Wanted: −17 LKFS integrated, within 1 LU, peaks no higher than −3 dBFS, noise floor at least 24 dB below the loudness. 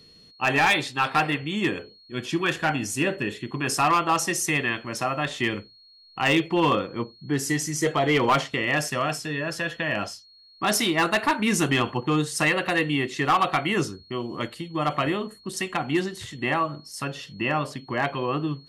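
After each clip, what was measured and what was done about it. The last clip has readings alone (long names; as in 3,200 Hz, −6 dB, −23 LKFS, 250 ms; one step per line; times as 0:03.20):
share of clipped samples 0.5%; peaks flattened at −14.5 dBFS; interfering tone 4,300 Hz; level of the tone −51 dBFS; integrated loudness −25.0 LKFS; sample peak −14.5 dBFS; target loudness −17.0 LKFS
→ clipped peaks rebuilt −14.5 dBFS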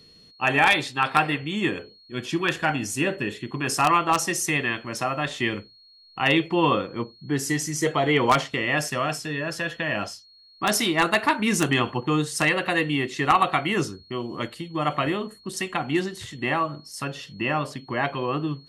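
share of clipped samples 0.0%; interfering tone 4,300 Hz; level of the tone −51 dBFS
→ notch filter 4,300 Hz, Q 30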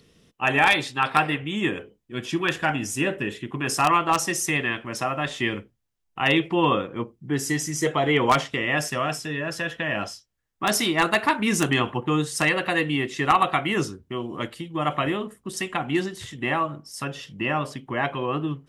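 interfering tone none found; integrated loudness −24.5 LKFS; sample peak −5.5 dBFS; target loudness −17.0 LKFS
→ level +7.5 dB
brickwall limiter −3 dBFS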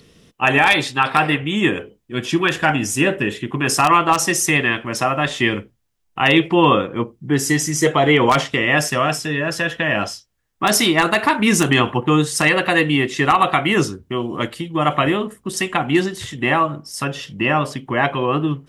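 integrated loudness −17.5 LKFS; sample peak −3.0 dBFS; background noise floor −64 dBFS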